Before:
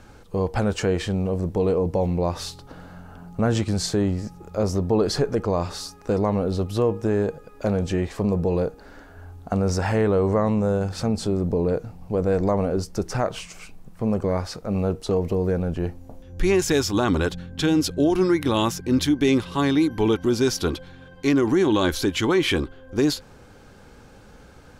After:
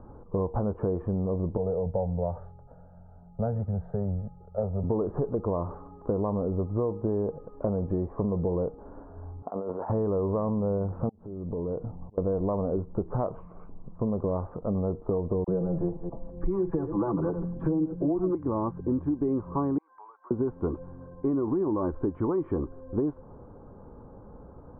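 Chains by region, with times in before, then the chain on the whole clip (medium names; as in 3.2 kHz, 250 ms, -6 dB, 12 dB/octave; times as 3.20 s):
1.57–4.84 s: static phaser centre 1.6 kHz, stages 8 + three bands expanded up and down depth 40%
9.42–9.90 s: high-pass 390 Hz + compressor with a negative ratio -33 dBFS
11.09–12.18 s: compression 12:1, threshold -28 dBFS + slow attack 499 ms
15.44–18.35 s: chunks repeated in reverse 123 ms, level -12 dB + comb 6 ms, depth 82% + phase dispersion lows, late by 40 ms, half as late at 1.3 kHz
19.78–20.31 s: high-pass 1 kHz 24 dB/octave + compression 16:1, threshold -42 dBFS
whole clip: elliptic low-pass 1.1 kHz, stop band 80 dB; band-stop 780 Hz, Q 19; compression, threshold -26 dBFS; trim +1.5 dB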